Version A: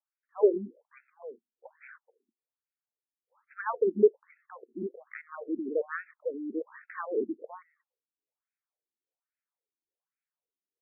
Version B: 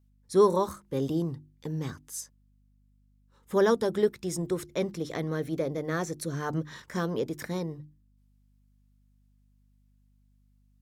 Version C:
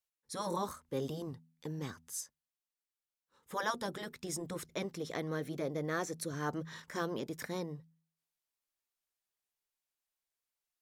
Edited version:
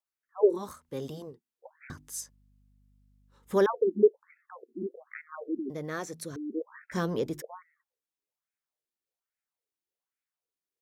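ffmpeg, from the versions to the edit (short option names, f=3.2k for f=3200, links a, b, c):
-filter_complex "[2:a]asplit=2[a][b];[1:a]asplit=2[c][d];[0:a]asplit=5[e][f][g][h][i];[e]atrim=end=0.71[j];[a]atrim=start=0.47:end=1.41[k];[f]atrim=start=1.17:end=1.902[l];[c]atrim=start=1.898:end=3.662[m];[g]atrim=start=3.658:end=5.702[n];[b]atrim=start=5.698:end=6.362[o];[h]atrim=start=6.358:end=6.93[p];[d]atrim=start=6.91:end=7.42[q];[i]atrim=start=7.4[r];[j][k]acrossfade=d=0.24:c1=tri:c2=tri[s];[s][l]acrossfade=d=0.24:c1=tri:c2=tri[t];[t][m]acrossfade=d=0.004:c1=hsin:c2=hsin[u];[u][n]acrossfade=d=0.004:c1=hsin:c2=hsin[v];[v][o]acrossfade=d=0.004:c1=hsin:c2=hsin[w];[w][p]acrossfade=d=0.004:c1=hsin:c2=hsin[x];[x][q]acrossfade=d=0.02:c1=tri:c2=tri[y];[y][r]acrossfade=d=0.02:c1=tri:c2=tri"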